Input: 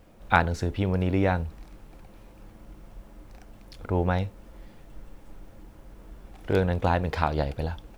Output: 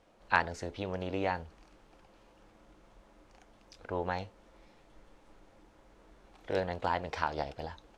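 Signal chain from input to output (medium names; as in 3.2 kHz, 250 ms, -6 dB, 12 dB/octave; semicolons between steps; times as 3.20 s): tone controls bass -11 dB, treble +6 dB; formant shift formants +2 st; distance through air 81 m; trim -5.5 dB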